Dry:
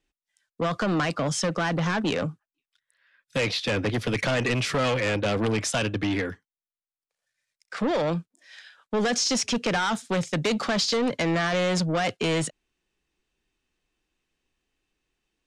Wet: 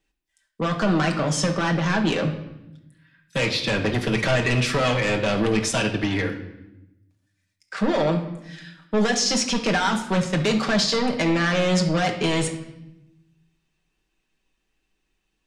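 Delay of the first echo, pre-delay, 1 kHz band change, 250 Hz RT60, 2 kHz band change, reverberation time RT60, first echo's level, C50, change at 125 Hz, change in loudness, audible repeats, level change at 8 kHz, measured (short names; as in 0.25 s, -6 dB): none, 5 ms, +3.0 dB, 1.4 s, +3.5 dB, 0.90 s, none, 9.0 dB, +4.5 dB, +3.5 dB, none, +2.5 dB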